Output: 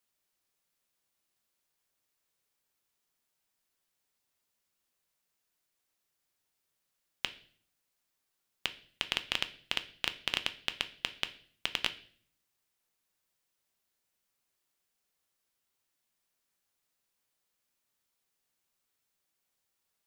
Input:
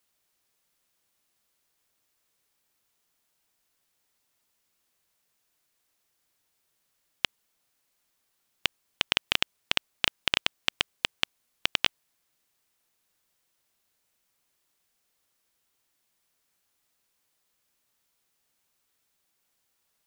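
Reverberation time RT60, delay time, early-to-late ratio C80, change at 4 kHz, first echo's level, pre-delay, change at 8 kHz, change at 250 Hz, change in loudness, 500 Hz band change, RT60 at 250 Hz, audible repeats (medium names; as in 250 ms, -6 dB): 0.50 s, no echo, 20.0 dB, -6.5 dB, no echo, 5 ms, -6.5 dB, -6.5 dB, -6.5 dB, -6.5 dB, 0.75 s, no echo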